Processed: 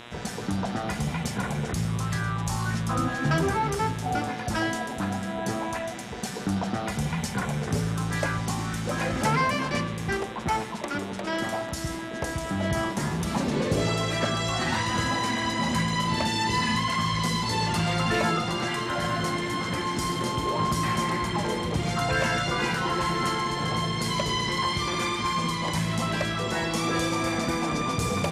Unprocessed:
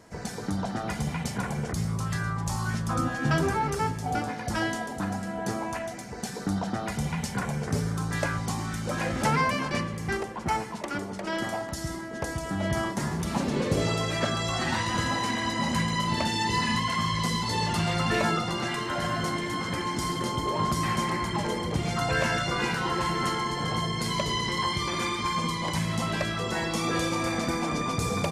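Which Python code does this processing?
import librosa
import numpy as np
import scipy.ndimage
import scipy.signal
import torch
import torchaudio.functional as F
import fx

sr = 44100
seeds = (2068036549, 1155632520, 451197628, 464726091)

y = fx.dmg_buzz(x, sr, base_hz=120.0, harmonics=33, level_db=-47.0, tilt_db=-1, odd_only=False)
y = fx.cheby_harmonics(y, sr, harmonics=(5,), levels_db=(-26,), full_scale_db=-13.0)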